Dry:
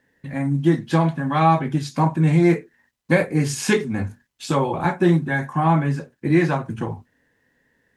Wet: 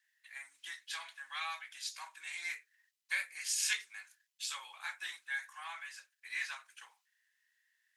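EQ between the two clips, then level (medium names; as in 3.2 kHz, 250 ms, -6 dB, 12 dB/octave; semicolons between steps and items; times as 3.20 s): Bessel high-pass 2.6 kHz, order 4; -4.0 dB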